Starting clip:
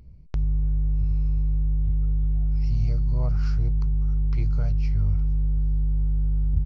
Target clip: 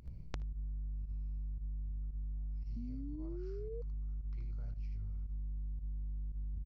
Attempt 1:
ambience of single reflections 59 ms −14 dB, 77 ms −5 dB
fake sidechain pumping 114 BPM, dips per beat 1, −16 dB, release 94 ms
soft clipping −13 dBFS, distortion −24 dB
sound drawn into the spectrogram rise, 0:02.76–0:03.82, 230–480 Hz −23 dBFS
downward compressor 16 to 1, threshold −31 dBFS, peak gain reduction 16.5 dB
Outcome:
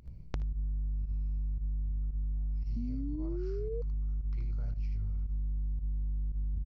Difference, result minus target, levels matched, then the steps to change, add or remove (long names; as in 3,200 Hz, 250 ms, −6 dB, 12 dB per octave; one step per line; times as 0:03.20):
downward compressor: peak gain reduction −7 dB
change: downward compressor 16 to 1, threshold −38.5 dBFS, peak gain reduction 23.5 dB